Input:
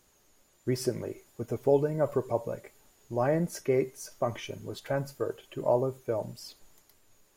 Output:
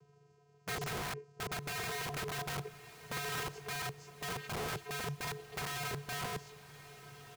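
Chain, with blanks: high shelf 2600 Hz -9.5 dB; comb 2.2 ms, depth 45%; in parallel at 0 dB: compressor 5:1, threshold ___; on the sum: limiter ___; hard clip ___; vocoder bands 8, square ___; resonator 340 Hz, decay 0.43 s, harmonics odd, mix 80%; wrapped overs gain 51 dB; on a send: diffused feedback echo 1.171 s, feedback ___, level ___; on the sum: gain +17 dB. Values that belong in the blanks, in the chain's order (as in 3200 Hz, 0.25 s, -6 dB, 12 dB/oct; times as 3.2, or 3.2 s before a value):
-39 dBFS, -19.5 dBFS, -31 dBFS, 143 Hz, 44%, -15 dB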